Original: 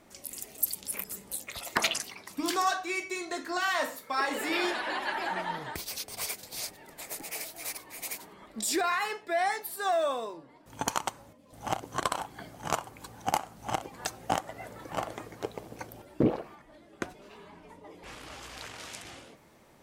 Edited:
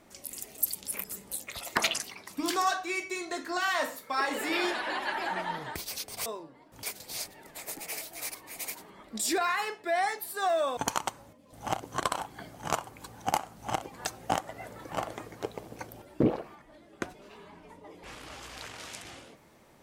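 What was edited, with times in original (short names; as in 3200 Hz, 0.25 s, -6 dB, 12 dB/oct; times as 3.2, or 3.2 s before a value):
10.2–10.77 move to 6.26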